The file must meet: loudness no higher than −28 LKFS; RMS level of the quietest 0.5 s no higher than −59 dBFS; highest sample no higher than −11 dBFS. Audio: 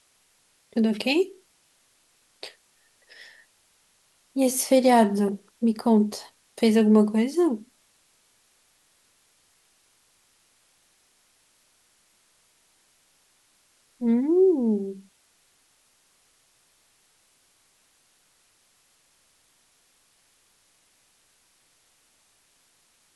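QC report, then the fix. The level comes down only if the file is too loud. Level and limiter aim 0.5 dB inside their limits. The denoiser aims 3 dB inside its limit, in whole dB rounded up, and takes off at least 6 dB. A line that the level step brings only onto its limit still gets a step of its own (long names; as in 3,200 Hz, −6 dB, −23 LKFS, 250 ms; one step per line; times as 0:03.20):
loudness −22.5 LKFS: out of spec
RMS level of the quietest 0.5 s −65 dBFS: in spec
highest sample −8.0 dBFS: out of spec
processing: level −6 dB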